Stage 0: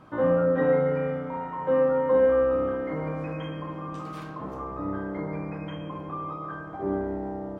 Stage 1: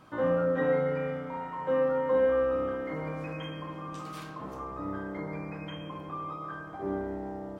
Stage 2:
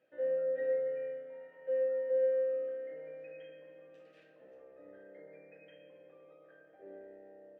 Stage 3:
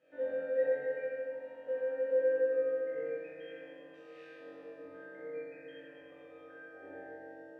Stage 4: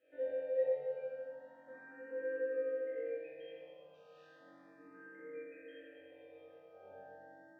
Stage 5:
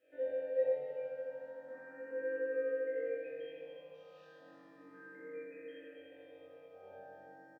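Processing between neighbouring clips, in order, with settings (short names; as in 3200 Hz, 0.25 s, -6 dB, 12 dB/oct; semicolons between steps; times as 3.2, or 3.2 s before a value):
high shelf 2400 Hz +11 dB; gain -5 dB
vowel filter e; gain -4.5 dB
air absorption 51 m; flutter echo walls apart 3.7 m, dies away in 1.3 s; FDN reverb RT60 2.1 s, low-frequency decay 1.6×, high-frequency decay 0.95×, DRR -2 dB
endless phaser +0.34 Hz; gain -2.5 dB
feedback echo 0.296 s, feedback 44%, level -9 dB; gain +1 dB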